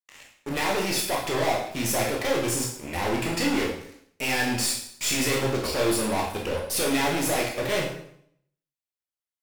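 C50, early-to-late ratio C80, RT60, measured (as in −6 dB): 4.5 dB, 8.5 dB, 0.65 s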